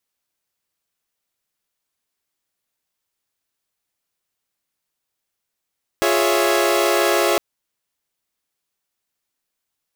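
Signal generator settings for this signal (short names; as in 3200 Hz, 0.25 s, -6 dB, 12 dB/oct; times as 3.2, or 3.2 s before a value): chord F4/G#4/C#5/E5 saw, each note -18.5 dBFS 1.36 s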